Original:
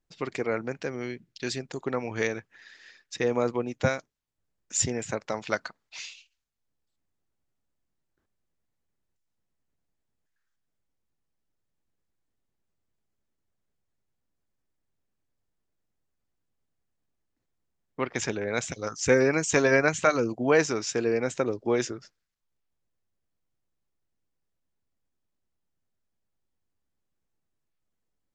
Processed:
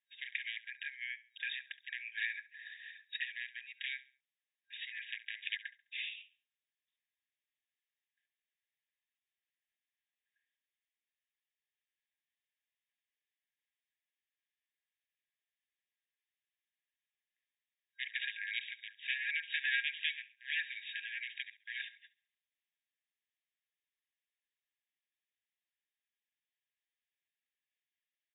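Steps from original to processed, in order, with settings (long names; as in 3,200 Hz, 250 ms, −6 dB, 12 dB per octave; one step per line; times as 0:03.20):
downward compressor 2 to 1, threshold −26 dBFS, peak gain reduction 6 dB
wave folding −22 dBFS
brick-wall band-pass 1,600–3,800 Hz
on a send: repeating echo 69 ms, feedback 34%, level −18 dB
on the sum: level +2 dB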